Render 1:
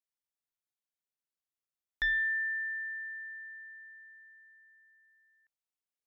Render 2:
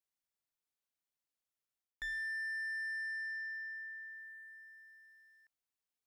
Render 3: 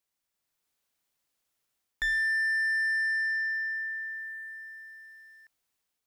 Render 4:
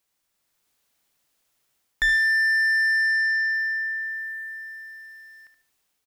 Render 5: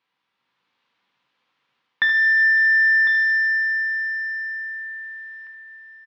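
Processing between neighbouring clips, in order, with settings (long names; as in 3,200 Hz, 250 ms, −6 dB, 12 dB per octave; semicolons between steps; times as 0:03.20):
reversed playback; downward compressor 16 to 1, threshold −40 dBFS, peak gain reduction 13.5 dB; reversed playback; leveller curve on the samples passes 1; level +1.5 dB
automatic gain control gain up to 5 dB; level +7 dB
repeating echo 74 ms, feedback 30%, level −9 dB; level +8 dB
loudspeaker in its box 180–3,600 Hz, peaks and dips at 350 Hz −5 dB, 640 Hz −10 dB, 990 Hz +6 dB; single-tap delay 1,053 ms −10 dB; coupled-rooms reverb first 0.38 s, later 2.6 s, from −15 dB, DRR 4.5 dB; level +5 dB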